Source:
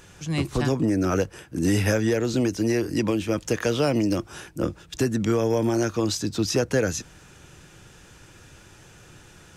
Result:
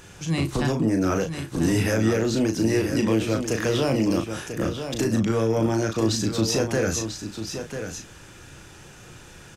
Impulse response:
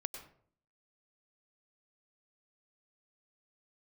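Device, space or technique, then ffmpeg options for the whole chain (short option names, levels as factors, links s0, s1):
soft clipper into limiter: -filter_complex "[0:a]asoftclip=type=tanh:threshold=0.224,alimiter=limit=0.119:level=0:latency=1,asettb=1/sr,asplit=3[s0][s1][s2];[s0]atrim=end=5.194[s3];[s1]atrim=start=5.19:end=6.2,asetpts=PTS-STARTPTS,afade=t=in:d=0.004:c=qsin,afade=t=out:st=1.006:d=0.004:c=qsin,highshelf=f=10000:g=-8[s4];[s2]atrim=start=6.196[s5];[s3][s4]acrossfade=d=0.004:c1=hsin:c2=qsin[s6];[s6][s5]acrossfade=d=0.004:c1=qsin:c2=hsin,asplit=2[s7][s8];[s8]adelay=36,volume=0.501[s9];[s7][s9]amix=inputs=2:normalize=0,aecho=1:1:993:0.376,volume=1.33"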